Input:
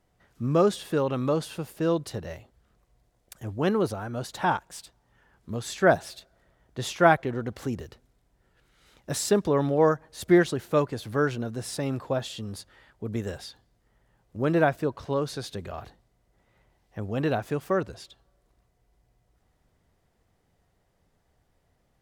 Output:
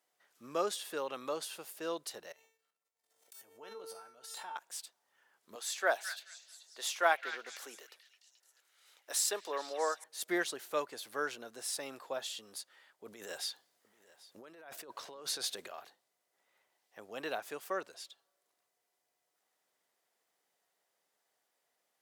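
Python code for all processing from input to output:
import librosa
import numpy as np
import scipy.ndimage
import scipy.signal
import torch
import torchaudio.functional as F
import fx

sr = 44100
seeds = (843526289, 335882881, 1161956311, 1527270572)

y = fx.chain(x, sr, fx.comb_fb(f0_hz=450.0, decay_s=0.55, harmonics='all', damping=0.0, mix_pct=90),
    fx.transient(attack_db=2, sustain_db=12),
    fx.pre_swell(db_per_s=61.0), at=(2.32, 4.56))
y = fx.chain(y, sr, fx.highpass(hz=440.0, slope=12),
    fx.echo_stepped(ms=216, hz=2100.0, octaves=0.7, feedback_pct=70, wet_db=-7.0), at=(5.55, 10.04))
y = fx.chain(y, sr, fx.over_compress(threshold_db=-34.0, ratio=-1.0),
    fx.echo_single(ms=786, db=-20.5), at=(13.06, 15.68))
y = scipy.signal.sosfilt(scipy.signal.butter(2, 400.0, 'highpass', fs=sr, output='sos'), y)
y = fx.tilt_eq(y, sr, slope=2.5)
y = y * librosa.db_to_amplitude(-8.0)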